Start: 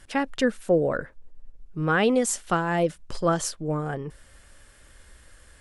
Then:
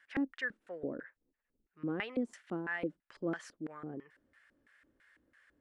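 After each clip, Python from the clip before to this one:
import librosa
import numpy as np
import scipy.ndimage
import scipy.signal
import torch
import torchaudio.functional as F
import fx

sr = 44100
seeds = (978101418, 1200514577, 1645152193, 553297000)

y = fx.filter_lfo_bandpass(x, sr, shape='square', hz=3.0, low_hz=290.0, high_hz=1800.0, q=3.2)
y = y * librosa.db_to_amplitude(-3.5)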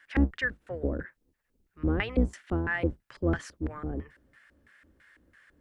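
y = fx.octave_divider(x, sr, octaves=2, level_db=3.0)
y = y * librosa.db_to_amplitude(7.0)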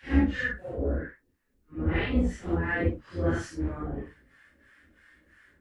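y = fx.phase_scramble(x, sr, seeds[0], window_ms=200)
y = y * librosa.db_to_amplitude(1.5)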